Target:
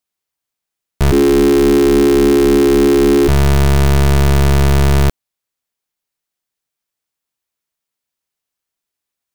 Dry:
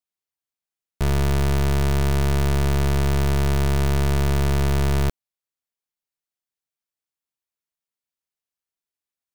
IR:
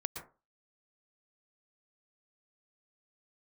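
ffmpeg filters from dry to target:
-filter_complex "[0:a]asplit=3[s0][s1][s2];[s0]afade=t=out:st=1.11:d=0.02[s3];[s1]afreqshift=-420,afade=t=in:st=1.11:d=0.02,afade=t=out:st=3.27:d=0.02[s4];[s2]afade=t=in:st=3.27:d=0.02[s5];[s3][s4][s5]amix=inputs=3:normalize=0,volume=2.82"

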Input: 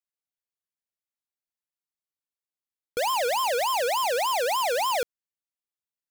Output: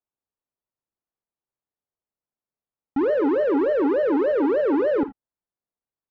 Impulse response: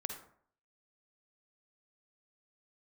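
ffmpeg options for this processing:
-filter_complex "[0:a]lowpass=1700,asetrate=25476,aresample=44100,atempo=1.73107,asplit=2[s0][s1];[1:a]atrim=start_sample=2205,atrim=end_sample=3969[s2];[s1][s2]afir=irnorm=-1:irlink=0,volume=1.19[s3];[s0][s3]amix=inputs=2:normalize=0"

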